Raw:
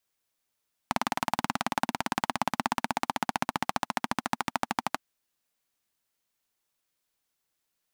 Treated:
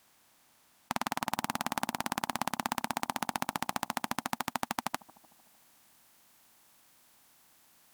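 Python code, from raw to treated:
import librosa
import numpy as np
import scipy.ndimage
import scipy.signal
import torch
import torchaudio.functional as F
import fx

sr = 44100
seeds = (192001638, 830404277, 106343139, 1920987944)

y = fx.bin_compress(x, sr, power=0.6)
y = fx.high_shelf(y, sr, hz=8100.0, db=fx.steps((0.0, 6.5), (1.32, 11.5)))
y = fx.echo_bbd(y, sr, ms=151, stages=1024, feedback_pct=56, wet_db=-20.5)
y = y * librosa.db_to_amplitude(-6.5)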